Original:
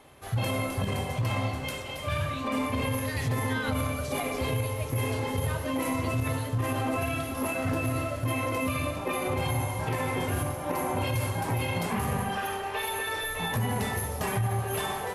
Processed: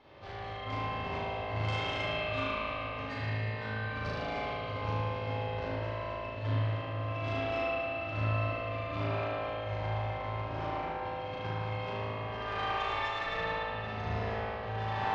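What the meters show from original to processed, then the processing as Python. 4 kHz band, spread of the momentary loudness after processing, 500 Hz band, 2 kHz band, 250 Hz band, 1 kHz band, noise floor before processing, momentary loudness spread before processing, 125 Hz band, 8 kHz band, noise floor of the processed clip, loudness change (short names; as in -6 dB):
-4.5 dB, 5 LU, -3.5 dB, -3.5 dB, -11.0 dB, -3.0 dB, -36 dBFS, 2 LU, -5.5 dB, under -25 dB, -39 dBFS, -5.0 dB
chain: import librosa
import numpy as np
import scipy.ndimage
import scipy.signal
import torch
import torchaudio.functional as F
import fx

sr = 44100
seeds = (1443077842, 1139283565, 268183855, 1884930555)

p1 = scipy.signal.sosfilt(scipy.signal.butter(8, 5200.0, 'lowpass', fs=sr, output='sos'), x)
p2 = fx.over_compress(p1, sr, threshold_db=-34.0, ratio=-0.5)
p3 = p2 + fx.room_flutter(p2, sr, wall_m=6.4, rt60_s=1.4, dry=0)
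p4 = fx.tube_stage(p3, sr, drive_db=20.0, bias=0.8)
p5 = fx.peak_eq(p4, sr, hz=100.0, db=8.0, octaves=0.22)
p6 = fx.rev_spring(p5, sr, rt60_s=3.6, pass_ms=(55,), chirp_ms=25, drr_db=-6.0)
y = p6 * librosa.db_to_amplitude(-7.0)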